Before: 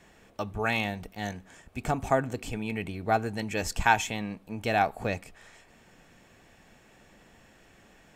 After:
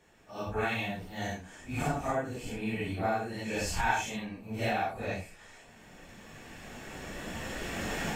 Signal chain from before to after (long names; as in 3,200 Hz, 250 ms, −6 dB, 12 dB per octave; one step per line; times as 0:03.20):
random phases in long frames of 200 ms
camcorder AGC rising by 9.4 dB per second
level −6 dB